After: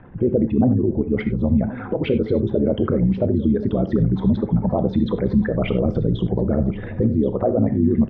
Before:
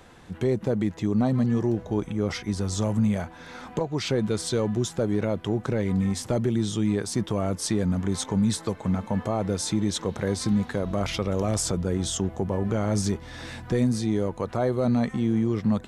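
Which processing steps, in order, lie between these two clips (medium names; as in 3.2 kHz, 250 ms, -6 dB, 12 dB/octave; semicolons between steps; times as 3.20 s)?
resonances exaggerated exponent 2; steep low-pass 2.8 kHz 36 dB/octave; gated-style reverb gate 210 ms flat, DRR 10 dB; granular stretch 0.51×, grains 31 ms; delay 1078 ms -16.5 dB; trim +7.5 dB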